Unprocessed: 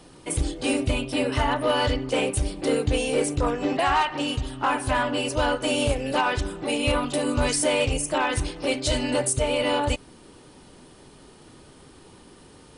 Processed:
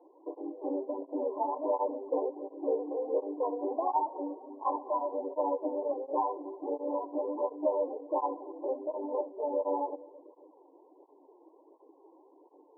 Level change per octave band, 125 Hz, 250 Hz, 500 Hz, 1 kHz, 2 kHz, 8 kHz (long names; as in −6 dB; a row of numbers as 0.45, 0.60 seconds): below −40 dB, −11.0 dB, −6.0 dB, −7.0 dB, below −40 dB, below −40 dB